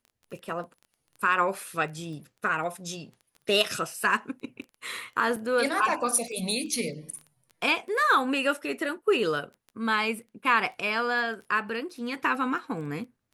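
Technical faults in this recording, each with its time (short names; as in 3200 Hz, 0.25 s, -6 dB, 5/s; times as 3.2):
crackle 11/s -37 dBFS
5.36–5.37 gap 5.1 ms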